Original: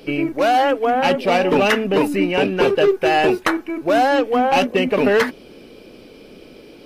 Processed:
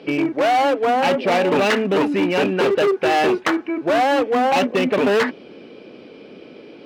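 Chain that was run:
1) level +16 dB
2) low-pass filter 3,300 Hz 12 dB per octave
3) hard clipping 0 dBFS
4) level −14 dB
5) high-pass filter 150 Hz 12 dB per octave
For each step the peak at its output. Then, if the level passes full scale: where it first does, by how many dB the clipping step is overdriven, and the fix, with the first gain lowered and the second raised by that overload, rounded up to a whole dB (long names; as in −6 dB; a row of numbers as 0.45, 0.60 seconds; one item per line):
+8.0, +8.0, 0.0, −14.0, −8.0 dBFS
step 1, 8.0 dB
step 1 +8 dB, step 4 −6 dB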